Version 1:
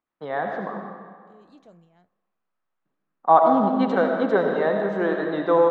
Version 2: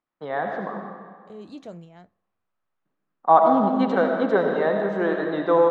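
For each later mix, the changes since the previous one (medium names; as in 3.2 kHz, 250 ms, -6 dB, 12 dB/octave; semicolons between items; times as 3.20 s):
second voice +12.0 dB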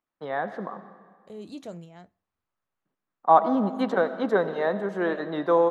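first voice: send -11.5 dB; master: remove distance through air 72 m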